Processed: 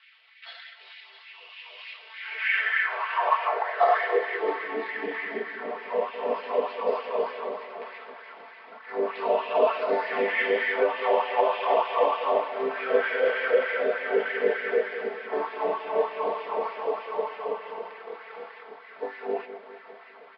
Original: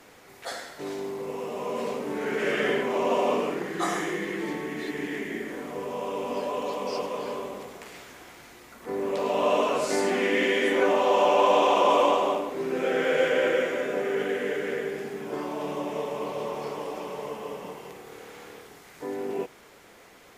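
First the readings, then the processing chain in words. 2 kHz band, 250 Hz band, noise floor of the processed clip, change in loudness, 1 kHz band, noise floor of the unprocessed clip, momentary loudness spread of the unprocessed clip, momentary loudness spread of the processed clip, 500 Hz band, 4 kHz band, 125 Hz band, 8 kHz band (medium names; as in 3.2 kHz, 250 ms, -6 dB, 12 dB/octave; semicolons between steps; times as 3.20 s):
+3.0 dB, -9.5 dB, -50 dBFS, +0.5 dB, +0.5 dB, -52 dBFS, 19 LU, 20 LU, -0.5 dB, -4.5 dB, under -15 dB, under -35 dB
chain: median filter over 9 samples; peak limiter -19.5 dBFS, peak gain reduction 9 dB; resampled via 11.025 kHz; LFO high-pass sine 3.3 Hz 510–2000 Hz; treble shelf 4 kHz -10 dB; comb 4.5 ms, depth 80%; two-band feedback delay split 1 kHz, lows 202 ms, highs 660 ms, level -12 dB; high-pass sweep 3 kHz -> 180 Hz, 2.17–5.17 s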